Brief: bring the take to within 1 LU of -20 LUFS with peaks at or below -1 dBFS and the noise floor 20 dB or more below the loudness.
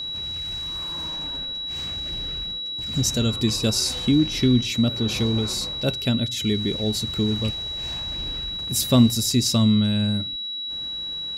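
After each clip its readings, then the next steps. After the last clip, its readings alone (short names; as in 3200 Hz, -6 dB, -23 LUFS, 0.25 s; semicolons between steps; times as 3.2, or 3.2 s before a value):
ticks 24/s; steady tone 3900 Hz; tone level -28 dBFS; loudness -23.0 LUFS; peak -4.5 dBFS; loudness target -20.0 LUFS
-> de-click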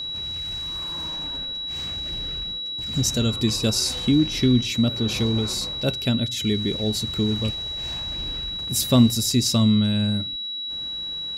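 ticks 0/s; steady tone 3900 Hz; tone level -28 dBFS
-> notch 3900 Hz, Q 30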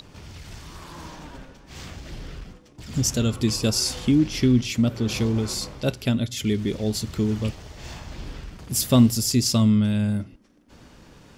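steady tone none; loudness -22.5 LUFS; peak -5.0 dBFS; loudness target -20.0 LUFS
-> gain +2.5 dB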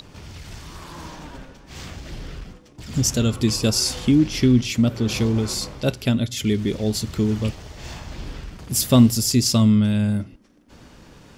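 loudness -20.0 LUFS; peak -2.5 dBFS; noise floor -49 dBFS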